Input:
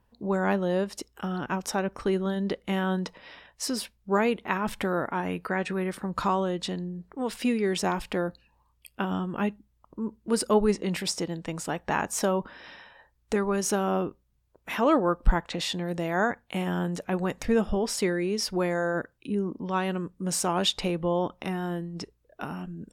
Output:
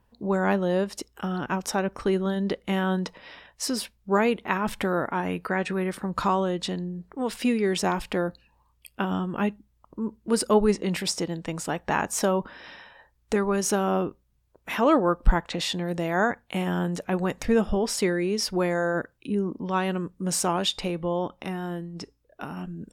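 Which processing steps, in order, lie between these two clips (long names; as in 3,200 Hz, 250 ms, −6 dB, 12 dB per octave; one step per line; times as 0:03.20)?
0:20.56–0:22.57: tuned comb filter 280 Hz, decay 0.3 s, harmonics all, mix 30%
level +2 dB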